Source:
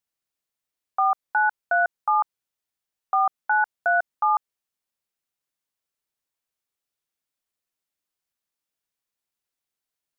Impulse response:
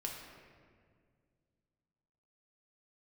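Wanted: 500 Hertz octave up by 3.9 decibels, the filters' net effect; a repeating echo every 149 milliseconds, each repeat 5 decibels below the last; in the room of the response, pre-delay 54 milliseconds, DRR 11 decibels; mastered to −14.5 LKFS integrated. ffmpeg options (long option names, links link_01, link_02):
-filter_complex "[0:a]equalizer=frequency=500:width_type=o:gain=7.5,aecho=1:1:149|298|447|596|745|894|1043:0.562|0.315|0.176|0.0988|0.0553|0.031|0.0173,asplit=2[link_01][link_02];[1:a]atrim=start_sample=2205,adelay=54[link_03];[link_02][link_03]afir=irnorm=-1:irlink=0,volume=-11dB[link_04];[link_01][link_04]amix=inputs=2:normalize=0,volume=6.5dB"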